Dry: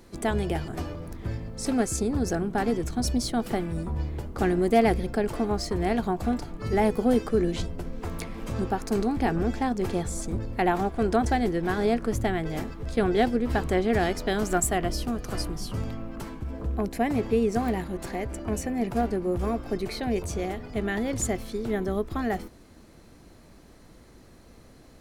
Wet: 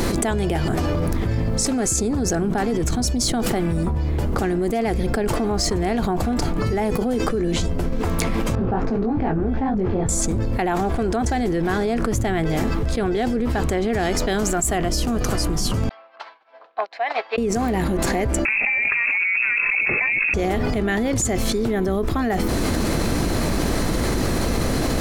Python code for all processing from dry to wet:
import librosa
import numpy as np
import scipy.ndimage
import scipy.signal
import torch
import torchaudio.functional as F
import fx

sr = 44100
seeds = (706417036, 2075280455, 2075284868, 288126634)

y = fx.chain(x, sr, fx.spacing_loss(db_at_10k=41),
    fx.detune_double(cents=57), at=(8.55, 10.09))
y = fx.chain(y, sr, fx.cheby1_bandpass(low_hz=680.0, high_hz=4300.0, order=3),
    fx.upward_expand(threshold_db=-55.0, expansion=2.5), at=(15.89, 17.38))
y = fx.chain(y, sr, fx.freq_invert(carrier_hz=2600),
    fx.over_compress(threshold_db=-34.0, ratio=-1.0), at=(18.45, 20.34))
y = fx.dynamic_eq(y, sr, hz=6900.0, q=2.5, threshold_db=-52.0, ratio=4.0, max_db=6)
y = fx.env_flatten(y, sr, amount_pct=100)
y = y * librosa.db_to_amplitude(-4.5)